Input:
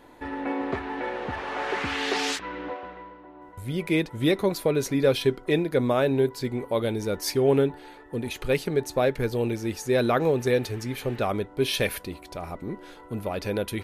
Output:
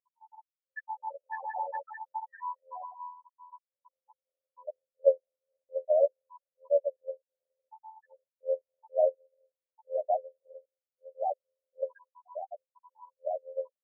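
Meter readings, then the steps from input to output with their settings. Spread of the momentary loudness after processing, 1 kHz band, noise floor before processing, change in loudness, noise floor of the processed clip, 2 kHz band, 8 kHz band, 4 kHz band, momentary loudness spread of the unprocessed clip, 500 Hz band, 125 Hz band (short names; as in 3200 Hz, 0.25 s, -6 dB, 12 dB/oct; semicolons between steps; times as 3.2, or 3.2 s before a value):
19 LU, -5.0 dB, -48 dBFS, -7.0 dB, under -85 dBFS, under -15 dB, under -40 dB, under -40 dB, 14 LU, -6.5 dB, under -40 dB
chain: loudest bins only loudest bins 2; AGC gain up to 14 dB; FFT band-pass 520–1900 Hz; AM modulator 84 Hz, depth 35%; gain -7 dB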